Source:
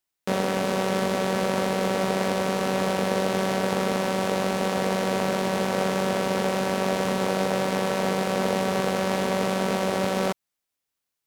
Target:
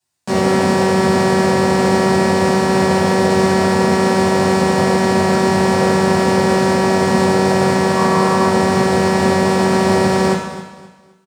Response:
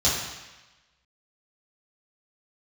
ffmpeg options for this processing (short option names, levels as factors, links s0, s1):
-filter_complex "[0:a]asettb=1/sr,asplit=3[s0][s1][s2];[s0]atrim=end=7.954[s3];[s1]atrim=start=7.95:end=8.49,asetpts=PTS-STARTPTS,afade=t=in:d=0.004:c=qsin,afade=t=out:st=0.536:d=0.004:c=qsin,equalizer=f=1100:w=4.1:g=10[s4];[s2]atrim=start=8.486[s5];[s3][s4]acrossfade=d=0.004:c1=hsin:c2=qsin[s6];[s6][s5]acrossfade=d=0.004:c1=qsin:c2=hsin,alimiter=limit=0.178:level=0:latency=1,aecho=1:1:262|524|786:0.2|0.0599|0.018[s7];[1:a]atrim=start_sample=2205,asetrate=57330,aresample=44100[s8];[s7][s8]afir=irnorm=-1:irlink=0,volume=0.794"